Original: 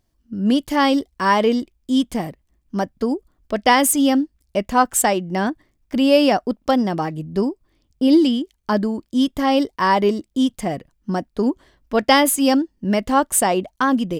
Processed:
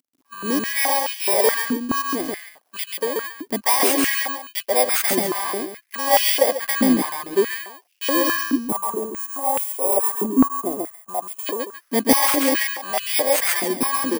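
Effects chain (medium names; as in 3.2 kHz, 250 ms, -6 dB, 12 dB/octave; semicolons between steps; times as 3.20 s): bit-reversed sample order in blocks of 32 samples; word length cut 10-bit, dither none; time-frequency box 8.54–11.46 s, 1.4–6.4 kHz -18 dB; on a send: loudspeakers at several distances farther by 46 m -2 dB, 95 m -12 dB; on the sum: step-sequenced high-pass 4.7 Hz 270–2700 Hz; trim -5 dB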